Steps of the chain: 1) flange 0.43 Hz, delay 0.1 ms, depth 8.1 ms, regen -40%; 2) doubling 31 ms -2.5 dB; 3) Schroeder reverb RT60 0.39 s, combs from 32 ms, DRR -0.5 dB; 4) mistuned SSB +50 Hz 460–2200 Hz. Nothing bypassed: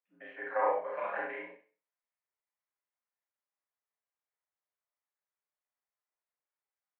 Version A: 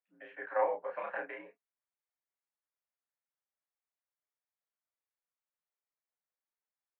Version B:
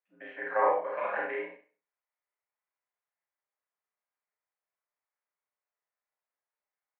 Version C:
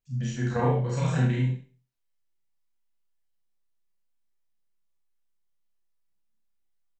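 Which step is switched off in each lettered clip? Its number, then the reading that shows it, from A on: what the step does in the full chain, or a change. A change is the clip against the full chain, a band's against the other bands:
3, 500 Hz band +2.0 dB; 1, momentary loudness spread change -1 LU; 4, 250 Hz band +22.5 dB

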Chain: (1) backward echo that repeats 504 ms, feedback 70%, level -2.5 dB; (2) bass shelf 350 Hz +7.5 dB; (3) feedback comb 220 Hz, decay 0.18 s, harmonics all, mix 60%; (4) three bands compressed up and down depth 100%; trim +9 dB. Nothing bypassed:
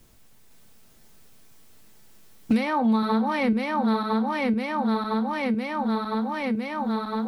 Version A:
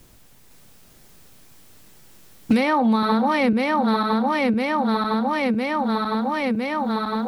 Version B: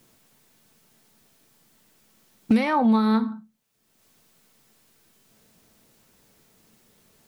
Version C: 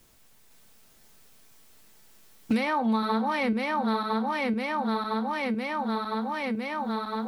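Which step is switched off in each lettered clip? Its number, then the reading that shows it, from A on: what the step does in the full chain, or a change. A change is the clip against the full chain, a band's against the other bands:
3, 250 Hz band -2.5 dB; 1, 250 Hz band +3.5 dB; 2, 250 Hz band -4.0 dB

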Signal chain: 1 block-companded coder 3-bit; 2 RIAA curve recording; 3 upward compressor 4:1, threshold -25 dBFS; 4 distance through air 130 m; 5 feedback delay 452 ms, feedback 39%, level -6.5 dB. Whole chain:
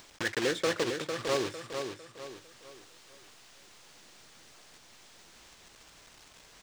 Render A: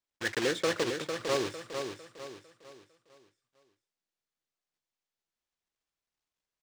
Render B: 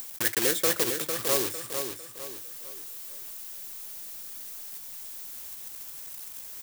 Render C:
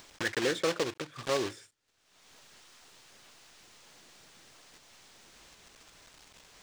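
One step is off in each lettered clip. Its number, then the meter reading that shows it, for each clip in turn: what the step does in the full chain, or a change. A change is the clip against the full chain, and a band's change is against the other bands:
3, momentary loudness spread change -5 LU; 4, 8 kHz band +12.0 dB; 5, momentary loudness spread change -14 LU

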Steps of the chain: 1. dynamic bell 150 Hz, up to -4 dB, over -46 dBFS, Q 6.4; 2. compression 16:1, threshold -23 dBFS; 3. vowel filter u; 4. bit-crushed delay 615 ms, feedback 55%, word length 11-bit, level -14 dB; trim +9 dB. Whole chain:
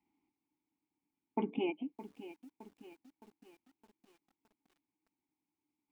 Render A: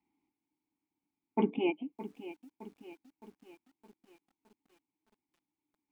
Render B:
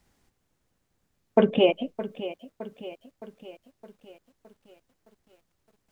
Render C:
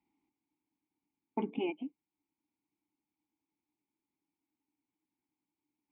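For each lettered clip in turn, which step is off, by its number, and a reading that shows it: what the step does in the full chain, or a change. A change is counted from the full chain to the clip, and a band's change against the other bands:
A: 2, mean gain reduction 3.5 dB; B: 3, 500 Hz band +5.5 dB; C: 4, momentary loudness spread change -12 LU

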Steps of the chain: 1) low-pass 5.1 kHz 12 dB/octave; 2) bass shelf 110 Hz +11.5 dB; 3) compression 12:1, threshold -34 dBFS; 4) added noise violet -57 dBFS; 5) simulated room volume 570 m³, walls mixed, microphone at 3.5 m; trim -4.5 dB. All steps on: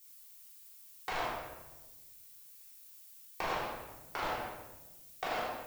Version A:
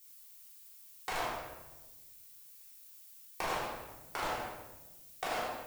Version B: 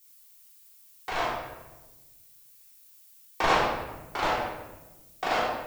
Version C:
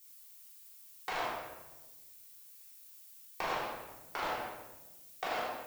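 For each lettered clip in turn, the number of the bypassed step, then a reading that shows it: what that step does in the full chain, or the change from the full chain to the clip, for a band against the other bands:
1, 8 kHz band +4.0 dB; 3, mean gain reduction 6.5 dB; 2, 125 Hz band -4.5 dB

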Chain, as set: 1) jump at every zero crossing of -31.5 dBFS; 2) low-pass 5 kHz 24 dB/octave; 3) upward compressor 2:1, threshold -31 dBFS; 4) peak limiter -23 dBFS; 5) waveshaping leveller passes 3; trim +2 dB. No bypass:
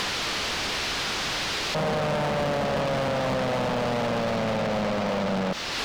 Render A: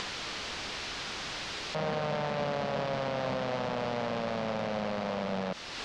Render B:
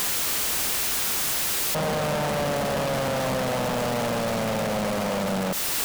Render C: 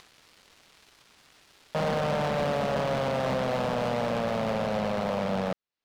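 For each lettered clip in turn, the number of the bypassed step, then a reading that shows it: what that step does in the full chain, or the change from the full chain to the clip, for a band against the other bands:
5, crest factor change +7.5 dB; 2, 8 kHz band +10.0 dB; 1, distortion -10 dB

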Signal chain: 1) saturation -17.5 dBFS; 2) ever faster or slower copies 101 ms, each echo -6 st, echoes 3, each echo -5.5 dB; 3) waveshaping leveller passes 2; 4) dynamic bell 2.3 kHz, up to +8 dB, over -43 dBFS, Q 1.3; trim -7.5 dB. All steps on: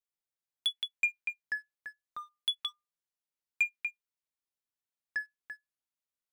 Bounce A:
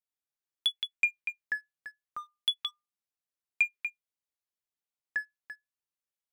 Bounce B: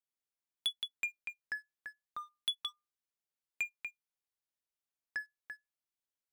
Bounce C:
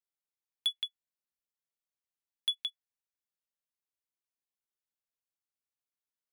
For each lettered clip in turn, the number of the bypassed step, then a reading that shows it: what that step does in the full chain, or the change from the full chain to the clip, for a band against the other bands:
1, crest factor change +1.5 dB; 4, 2 kHz band -5.5 dB; 2, momentary loudness spread change -11 LU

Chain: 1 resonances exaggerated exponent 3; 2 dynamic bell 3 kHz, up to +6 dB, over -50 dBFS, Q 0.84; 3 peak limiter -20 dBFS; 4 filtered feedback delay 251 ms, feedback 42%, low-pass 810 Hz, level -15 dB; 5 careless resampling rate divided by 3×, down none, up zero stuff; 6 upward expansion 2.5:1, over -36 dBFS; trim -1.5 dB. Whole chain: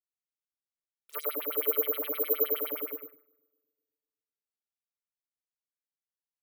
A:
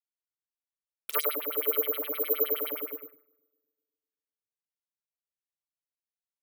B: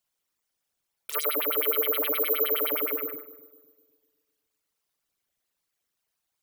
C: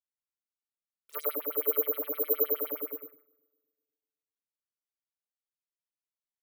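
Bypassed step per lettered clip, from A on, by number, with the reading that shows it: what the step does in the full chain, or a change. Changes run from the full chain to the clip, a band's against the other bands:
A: 3, crest factor change +1.5 dB; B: 6, 500 Hz band -6.5 dB; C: 2, 4 kHz band -7.5 dB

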